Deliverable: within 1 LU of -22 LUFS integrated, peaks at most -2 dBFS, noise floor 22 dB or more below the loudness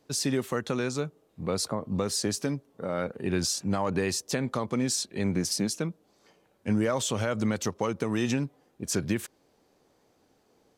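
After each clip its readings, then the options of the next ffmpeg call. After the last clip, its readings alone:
loudness -29.5 LUFS; peak level -15.0 dBFS; loudness target -22.0 LUFS
-> -af "volume=2.37"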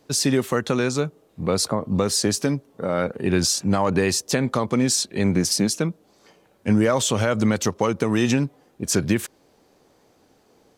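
loudness -22.0 LUFS; peak level -7.5 dBFS; noise floor -60 dBFS

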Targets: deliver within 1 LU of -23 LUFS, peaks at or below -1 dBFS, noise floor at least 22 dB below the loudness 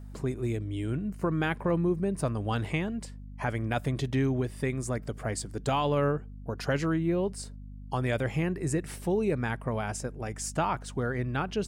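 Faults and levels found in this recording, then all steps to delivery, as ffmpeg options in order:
hum 50 Hz; highest harmonic 250 Hz; hum level -41 dBFS; loudness -30.5 LUFS; peak level -16.0 dBFS; loudness target -23.0 LUFS
-> -af "bandreject=f=50:t=h:w=4,bandreject=f=100:t=h:w=4,bandreject=f=150:t=h:w=4,bandreject=f=200:t=h:w=4,bandreject=f=250:t=h:w=4"
-af "volume=2.37"

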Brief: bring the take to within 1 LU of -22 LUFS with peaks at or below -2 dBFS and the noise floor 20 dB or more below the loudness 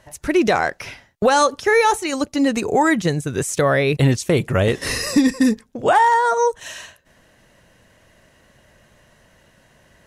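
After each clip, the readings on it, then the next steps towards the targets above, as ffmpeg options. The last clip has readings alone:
loudness -18.0 LUFS; peak level -4.5 dBFS; loudness target -22.0 LUFS
-> -af "volume=0.631"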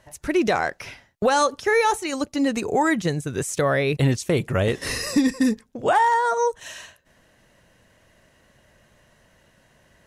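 loudness -22.0 LUFS; peak level -8.5 dBFS; noise floor -60 dBFS

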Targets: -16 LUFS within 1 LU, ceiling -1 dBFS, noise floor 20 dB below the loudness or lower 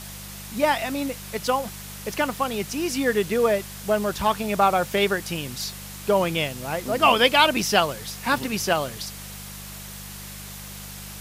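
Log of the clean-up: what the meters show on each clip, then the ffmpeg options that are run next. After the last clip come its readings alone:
hum 50 Hz; highest harmonic 200 Hz; hum level -39 dBFS; noise floor -38 dBFS; noise floor target -43 dBFS; loudness -23.0 LUFS; peak level -4.0 dBFS; loudness target -16.0 LUFS
-> -af "bandreject=f=50:t=h:w=4,bandreject=f=100:t=h:w=4,bandreject=f=150:t=h:w=4,bandreject=f=200:t=h:w=4"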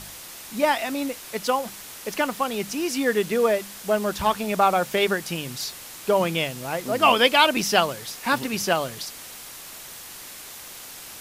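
hum not found; noise floor -41 dBFS; noise floor target -44 dBFS
-> -af "afftdn=nr=6:nf=-41"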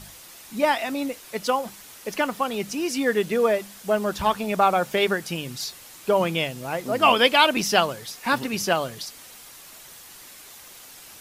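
noise floor -45 dBFS; loudness -23.5 LUFS; peak level -4.0 dBFS; loudness target -16.0 LUFS
-> -af "volume=2.37,alimiter=limit=0.891:level=0:latency=1"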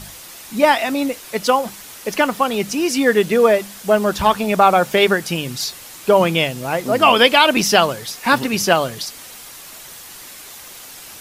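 loudness -16.5 LUFS; peak level -1.0 dBFS; noise floor -38 dBFS

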